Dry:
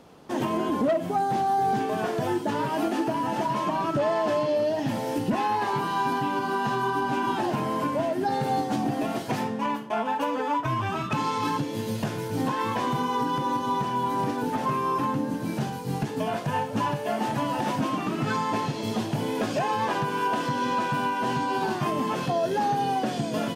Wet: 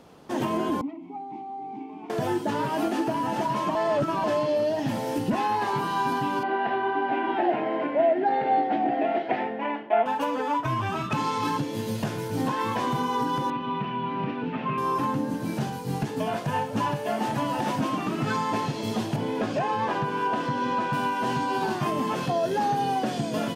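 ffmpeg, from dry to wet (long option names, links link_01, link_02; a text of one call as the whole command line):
ffmpeg -i in.wav -filter_complex "[0:a]asettb=1/sr,asplit=3[link_01][link_02][link_03];[link_01]atrim=end=0.814[link_04];[link_02]atrim=start=0.81:end=2.1,asetpts=PTS-STARTPTS,afade=type=in:duration=0.004:curve=qsin,afade=type=out:start_time=1.286:duration=0.004:curve=qsin,asplit=3[link_05][link_06][link_07];[link_05]bandpass=frequency=300:width_type=q:width=8,volume=0dB[link_08];[link_06]bandpass=frequency=870:width_type=q:width=8,volume=-6dB[link_09];[link_07]bandpass=frequency=2240:width_type=q:width=8,volume=-9dB[link_10];[link_08][link_09][link_10]amix=inputs=3:normalize=0[link_11];[link_03]atrim=start=2.096[link_12];[link_04][link_11]acrossfade=duration=0.004:curve1=hsin:curve2=qsin[link_13];[link_13][link_12]acrossfade=duration=0.004:curve1=qsin:curve2=hsin,asettb=1/sr,asplit=3[link_14][link_15][link_16];[link_14]atrim=end=6.434[link_17];[link_15]atrim=start=6.43:end=10.06,asetpts=PTS-STARTPTS,afade=type=in:duration=0.004:curve=qsin,afade=type=out:start_time=3.626:duration=0.004:curve=qsin,highpass=320,equalizer=frequency=330:width_type=q:width=4:gain=7,equalizer=frequency=700:width_type=q:width=4:gain=10,equalizer=frequency=1100:width_type=q:width=4:gain=-9,equalizer=frequency=2000:width_type=q:width=4:gain=7,lowpass=frequency=3000:width=0.5412,lowpass=frequency=3000:width=1.3066[link_18];[link_16]atrim=start=10.056[link_19];[link_17][link_18]acrossfade=duration=0.004:curve1=hsin:curve2=qsin[link_20];[link_20][link_19]acrossfade=duration=0.004:curve1=qsin:curve2=hsin,asettb=1/sr,asplit=3[link_21][link_22][link_23];[link_21]atrim=end=13.504[link_24];[link_22]atrim=start=13.5:end=14.78,asetpts=PTS-STARTPTS,afade=type=in:duration=0.004:curve=qsin,afade=type=out:start_time=1.276:duration=0.004:curve=qsin,highpass=140,equalizer=frequency=170:width_type=q:width=4:gain=6,equalizer=frequency=310:width_type=q:width=4:gain=-4,equalizer=frequency=520:width_type=q:width=4:gain=-6,equalizer=frequency=850:width_type=q:width=4:gain=-9,equalizer=frequency=1600:width_type=q:width=4:gain=-3,equalizer=frequency=2600:width_type=q:width=4:gain=7,lowpass=frequency=3100:width=0.5412,lowpass=frequency=3100:width=1.3066[link_25];[link_23]atrim=start=14.776[link_26];[link_24][link_25]acrossfade=duration=0.004:curve1=hsin:curve2=qsin[link_27];[link_27][link_26]acrossfade=duration=0.004:curve1=qsin:curve2=hsin,asettb=1/sr,asplit=3[link_28][link_29][link_30];[link_28]atrim=end=19.164[link_31];[link_29]atrim=start=19.16:end=20.93,asetpts=PTS-STARTPTS,afade=type=in:duration=0.004:curve=qsin,afade=type=out:start_time=1.766:duration=0.004:curve=qsin,lowpass=frequency=3000:poles=1[link_32];[link_30]atrim=start=20.926[link_33];[link_31][link_32]acrossfade=duration=0.004:curve1=hsin:curve2=qsin[link_34];[link_34][link_33]acrossfade=duration=0.004:curve1=qsin:curve2=hsin,asplit=3[link_35][link_36][link_37];[link_35]atrim=end=3.752[link_38];[link_36]atrim=start=3.748:end=4.242,asetpts=PTS-STARTPTS,areverse[link_39];[link_37]atrim=start=4.238[link_40];[link_38][link_39]acrossfade=duration=0.004:curve1=hsin:curve2=hsin[link_41];[link_41][link_40]acrossfade=duration=0.004:curve1=hsin:curve2=hsin" out.wav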